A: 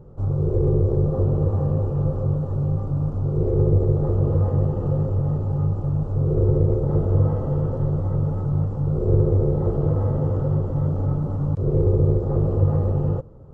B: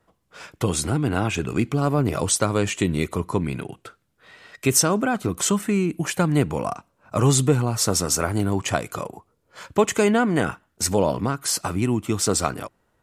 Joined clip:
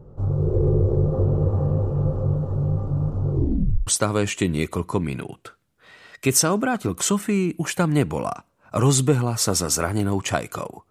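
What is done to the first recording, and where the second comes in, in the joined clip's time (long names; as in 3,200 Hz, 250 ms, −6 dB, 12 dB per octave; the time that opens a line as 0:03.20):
A
0:03.31: tape stop 0.56 s
0:03.87: continue with B from 0:02.27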